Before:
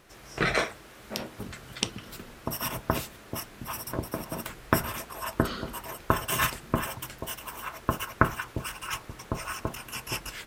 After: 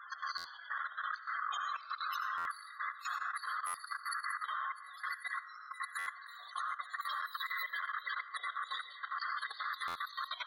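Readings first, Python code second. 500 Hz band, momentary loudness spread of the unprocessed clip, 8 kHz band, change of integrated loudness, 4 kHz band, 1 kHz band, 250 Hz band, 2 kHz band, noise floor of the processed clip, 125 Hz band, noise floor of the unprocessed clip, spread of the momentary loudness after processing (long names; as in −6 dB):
below −30 dB, 11 LU, −16.5 dB, −7.5 dB, −8.5 dB, −4.5 dB, below −40 dB, −4.5 dB, −52 dBFS, below −40 dB, −50 dBFS, 5 LU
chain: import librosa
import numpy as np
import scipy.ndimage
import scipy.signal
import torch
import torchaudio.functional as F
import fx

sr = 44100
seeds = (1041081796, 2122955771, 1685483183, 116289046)

y = fx.band_swap(x, sr, width_hz=1000)
y = fx.auto_swell(y, sr, attack_ms=117.0)
y = fx.dynamic_eq(y, sr, hz=4400.0, q=5.6, threshold_db=-54.0, ratio=4.0, max_db=4)
y = fx.spec_topn(y, sr, count=32)
y = scipy.signal.sosfilt(scipy.signal.butter(4, 1200.0, 'highpass', fs=sr, output='sos'), y)
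y = fx.over_compress(y, sr, threshold_db=-50.0, ratio=-1.0)
y = fx.high_shelf(y, sr, hz=2000.0, db=-8.5)
y = fx.rev_freeverb(y, sr, rt60_s=1.0, hf_ratio=0.65, predelay_ms=45, drr_db=7.0)
y = fx.level_steps(y, sr, step_db=13)
y = fx.buffer_glitch(y, sr, at_s=(0.37, 2.37, 3.66, 5.98, 9.87), block=512, repeats=6)
y = y * librosa.db_to_amplitude(14.0)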